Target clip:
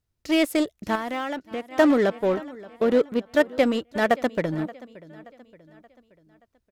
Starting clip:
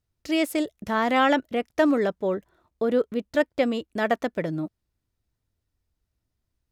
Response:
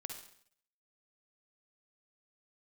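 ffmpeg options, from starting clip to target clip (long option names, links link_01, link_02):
-filter_complex "[0:a]aecho=1:1:577|1154|1731|2308:0.133|0.0613|0.0282|0.013,asplit=2[link_01][link_02];[link_02]acrusher=bits=3:mix=0:aa=0.5,volume=-9dB[link_03];[link_01][link_03]amix=inputs=2:normalize=0,asettb=1/sr,asplit=3[link_04][link_05][link_06];[link_04]atrim=end=0.954[link_07];[link_05]atrim=start=0.95:end=1.72,asetpts=PTS-STARTPTS,afade=type=in:duration=0.004:curve=qsin,afade=type=out:start_time=0.766:duration=0.004:curve=qsin,acompressor=threshold=-29dB:ratio=4[link_08];[link_06]atrim=start=1.716[link_09];[link_07][link_08]acrossfade=duration=0.004:curve1=hsin:curve2=qsin[link_10];[link_10][link_09]acrossfade=duration=0.004:curve1=qsin:curve2=hsin"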